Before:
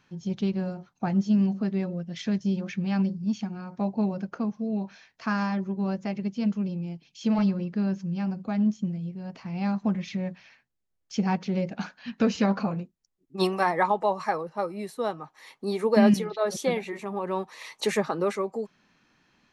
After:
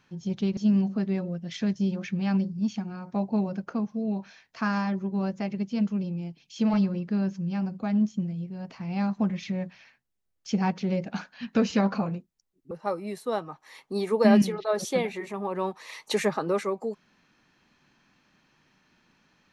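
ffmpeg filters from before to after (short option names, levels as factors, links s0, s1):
-filter_complex "[0:a]asplit=3[s0][s1][s2];[s0]atrim=end=0.572[s3];[s1]atrim=start=1.218:end=13.362[s4];[s2]atrim=start=14.428[s5];[s3][s4]acrossfade=d=0.004:c1=hsin:c2=hsin[s6];[s6][s5]acrossfade=d=0.004:c1=hsin:c2=hsin"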